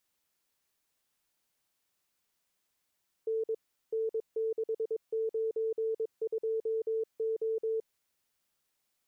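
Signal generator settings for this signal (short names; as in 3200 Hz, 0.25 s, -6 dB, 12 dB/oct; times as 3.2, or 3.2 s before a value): Morse "N N692O" 22 wpm 445 Hz -28.5 dBFS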